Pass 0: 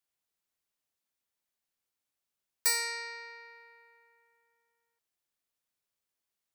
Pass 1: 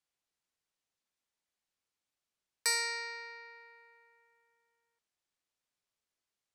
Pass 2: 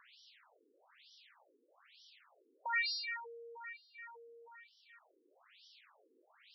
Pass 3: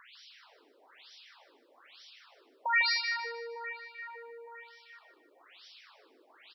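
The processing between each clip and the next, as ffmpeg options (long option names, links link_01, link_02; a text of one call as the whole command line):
ffmpeg -i in.wav -af "lowpass=8300" out.wav
ffmpeg -i in.wav -af "acompressor=mode=upward:threshold=-38dB:ratio=2.5,afftfilt=real='re*between(b*sr/1024,340*pow(4200/340,0.5+0.5*sin(2*PI*1.1*pts/sr))/1.41,340*pow(4200/340,0.5+0.5*sin(2*PI*1.1*pts/sr))*1.41)':imag='im*between(b*sr/1024,340*pow(4200/340,0.5+0.5*sin(2*PI*1.1*pts/sr))/1.41,340*pow(4200/340,0.5+0.5*sin(2*PI*1.1*pts/sr))*1.41)':win_size=1024:overlap=0.75,volume=5dB" out.wav
ffmpeg -i in.wav -af "aecho=1:1:152|304|456|608:0.398|0.151|0.0575|0.0218,volume=7.5dB" out.wav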